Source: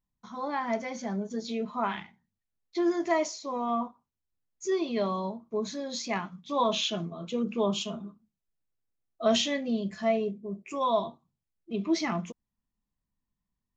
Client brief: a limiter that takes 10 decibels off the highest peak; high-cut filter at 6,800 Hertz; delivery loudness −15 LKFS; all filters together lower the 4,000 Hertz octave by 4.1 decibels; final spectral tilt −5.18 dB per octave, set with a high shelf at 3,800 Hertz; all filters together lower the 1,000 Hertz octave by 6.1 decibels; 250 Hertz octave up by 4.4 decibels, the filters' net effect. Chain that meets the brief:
low-pass filter 6,800 Hz
parametric band 250 Hz +6 dB
parametric band 1,000 Hz −8.5 dB
high-shelf EQ 3,800 Hz +7.5 dB
parametric band 4,000 Hz −9 dB
level +17.5 dB
brickwall limiter −5 dBFS

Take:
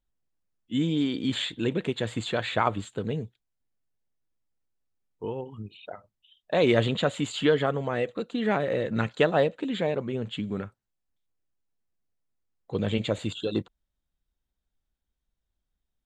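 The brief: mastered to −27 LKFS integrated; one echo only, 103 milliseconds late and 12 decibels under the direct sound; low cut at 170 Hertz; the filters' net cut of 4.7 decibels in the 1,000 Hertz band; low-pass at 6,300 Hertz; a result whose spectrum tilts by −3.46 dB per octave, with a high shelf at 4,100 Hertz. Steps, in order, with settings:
high-pass filter 170 Hz
low-pass filter 6,300 Hz
parametric band 1,000 Hz −7.5 dB
high-shelf EQ 4,100 Hz +8.5 dB
single-tap delay 103 ms −12 dB
level +2 dB

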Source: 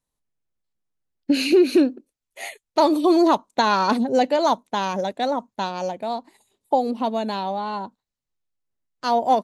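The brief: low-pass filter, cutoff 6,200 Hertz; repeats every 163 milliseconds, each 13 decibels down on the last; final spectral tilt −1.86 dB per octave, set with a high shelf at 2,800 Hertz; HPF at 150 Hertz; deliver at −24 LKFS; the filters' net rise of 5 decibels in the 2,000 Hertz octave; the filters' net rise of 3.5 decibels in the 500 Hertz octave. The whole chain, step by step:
high-pass filter 150 Hz
low-pass filter 6,200 Hz
parametric band 500 Hz +4.5 dB
parametric band 2,000 Hz +4 dB
high-shelf EQ 2,800 Hz +6.5 dB
repeating echo 163 ms, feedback 22%, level −13 dB
level −5.5 dB

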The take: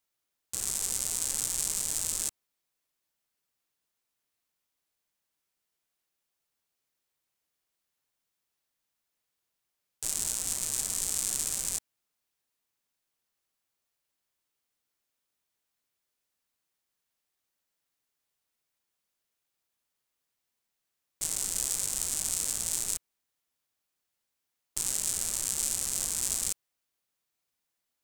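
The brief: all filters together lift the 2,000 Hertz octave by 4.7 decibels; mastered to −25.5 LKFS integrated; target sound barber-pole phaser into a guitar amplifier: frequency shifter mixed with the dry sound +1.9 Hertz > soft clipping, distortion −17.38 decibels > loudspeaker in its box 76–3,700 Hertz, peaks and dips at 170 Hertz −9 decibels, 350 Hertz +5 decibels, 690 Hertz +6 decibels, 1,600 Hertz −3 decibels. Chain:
parametric band 2,000 Hz +7 dB
frequency shifter mixed with the dry sound +1.9 Hz
soft clipping −16.5 dBFS
loudspeaker in its box 76–3,700 Hz, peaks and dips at 170 Hz −9 dB, 350 Hz +5 dB, 690 Hz +6 dB, 1,600 Hz −3 dB
level +20.5 dB

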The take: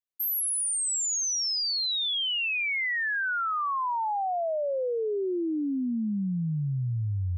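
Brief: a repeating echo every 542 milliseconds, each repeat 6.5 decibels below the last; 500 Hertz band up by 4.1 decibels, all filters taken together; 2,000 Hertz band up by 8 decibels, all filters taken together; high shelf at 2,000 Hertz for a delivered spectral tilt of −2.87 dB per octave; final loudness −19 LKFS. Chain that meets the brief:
parametric band 500 Hz +4.5 dB
high-shelf EQ 2,000 Hz +3.5 dB
parametric band 2,000 Hz +7.5 dB
repeating echo 542 ms, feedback 47%, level −6.5 dB
level +2.5 dB

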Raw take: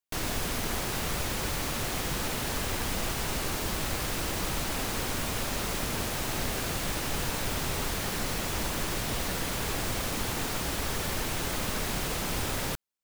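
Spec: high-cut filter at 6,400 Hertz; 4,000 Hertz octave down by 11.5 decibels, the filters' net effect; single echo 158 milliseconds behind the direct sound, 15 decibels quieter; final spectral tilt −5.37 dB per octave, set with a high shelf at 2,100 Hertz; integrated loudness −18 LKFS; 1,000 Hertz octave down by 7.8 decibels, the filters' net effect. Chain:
low-pass filter 6,400 Hz
parametric band 1,000 Hz −8.5 dB
high-shelf EQ 2,100 Hz −6 dB
parametric band 4,000 Hz −8 dB
single-tap delay 158 ms −15 dB
level +18 dB

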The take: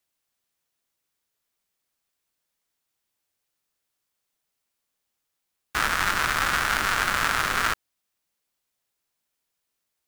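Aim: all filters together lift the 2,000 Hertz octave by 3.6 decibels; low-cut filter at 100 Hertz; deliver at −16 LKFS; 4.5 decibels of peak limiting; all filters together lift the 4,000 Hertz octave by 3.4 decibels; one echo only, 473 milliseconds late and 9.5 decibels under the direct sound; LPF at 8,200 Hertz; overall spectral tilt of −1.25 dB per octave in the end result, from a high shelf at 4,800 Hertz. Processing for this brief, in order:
high-pass filter 100 Hz
low-pass filter 8,200 Hz
parametric band 2,000 Hz +4.5 dB
parametric band 4,000 Hz +6 dB
high-shelf EQ 4,800 Hz −6.5 dB
brickwall limiter −9 dBFS
single-tap delay 473 ms −9.5 dB
level +6 dB

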